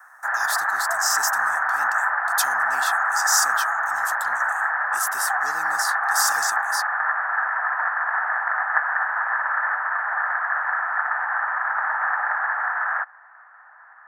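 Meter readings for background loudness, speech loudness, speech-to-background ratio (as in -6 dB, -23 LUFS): -22.5 LUFS, -26.5 LUFS, -4.0 dB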